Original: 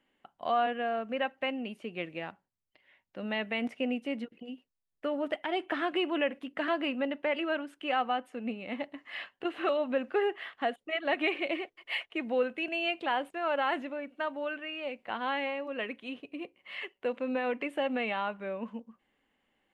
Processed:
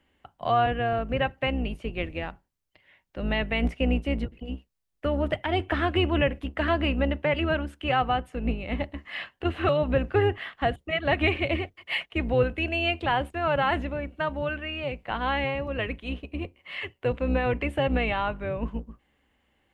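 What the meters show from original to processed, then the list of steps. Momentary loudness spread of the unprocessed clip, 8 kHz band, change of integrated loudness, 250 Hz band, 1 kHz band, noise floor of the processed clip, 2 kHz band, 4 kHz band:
11 LU, no reading, +5.5 dB, +5.5 dB, +5.0 dB, -75 dBFS, +5.0 dB, +5.0 dB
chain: octave divider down 2 oct, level +3 dB; trim +5 dB

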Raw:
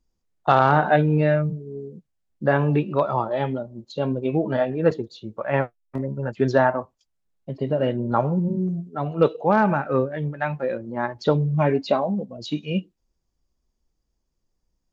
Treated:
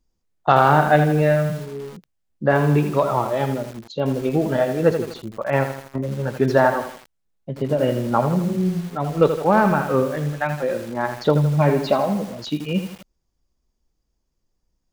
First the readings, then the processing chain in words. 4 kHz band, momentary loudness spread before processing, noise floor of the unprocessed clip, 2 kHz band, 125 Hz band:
+3.5 dB, 12 LU, -76 dBFS, +3.0 dB, +2.5 dB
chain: bit-crushed delay 81 ms, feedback 55%, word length 6-bit, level -8 dB; trim +2 dB

